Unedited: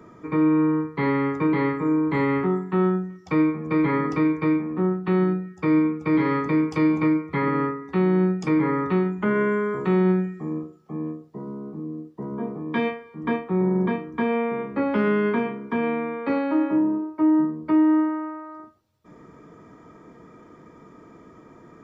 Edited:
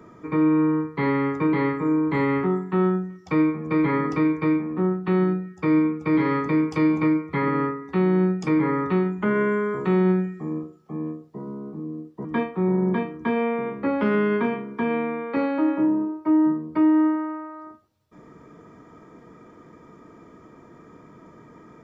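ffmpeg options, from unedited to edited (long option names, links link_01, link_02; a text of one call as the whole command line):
ffmpeg -i in.wav -filter_complex "[0:a]asplit=2[link_01][link_02];[link_01]atrim=end=12.252[link_03];[link_02]atrim=start=13.178[link_04];[link_03][link_04]acrossfade=duration=0.004:curve1=hsin:curve2=hsin" out.wav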